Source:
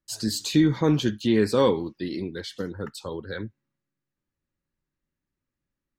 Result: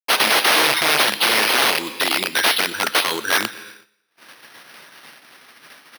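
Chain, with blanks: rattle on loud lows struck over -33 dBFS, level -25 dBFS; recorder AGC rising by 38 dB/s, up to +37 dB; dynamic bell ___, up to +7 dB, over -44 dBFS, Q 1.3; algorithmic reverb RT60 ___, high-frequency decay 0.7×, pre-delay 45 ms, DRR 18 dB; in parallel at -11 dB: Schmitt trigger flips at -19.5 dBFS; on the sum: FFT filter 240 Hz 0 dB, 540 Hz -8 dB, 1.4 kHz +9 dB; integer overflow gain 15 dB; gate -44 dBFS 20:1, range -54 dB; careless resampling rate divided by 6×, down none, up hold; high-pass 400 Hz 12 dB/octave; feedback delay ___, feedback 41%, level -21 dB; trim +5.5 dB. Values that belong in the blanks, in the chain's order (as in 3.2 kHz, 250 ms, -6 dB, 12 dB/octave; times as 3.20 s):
2.9 kHz, 2.7 s, 125 ms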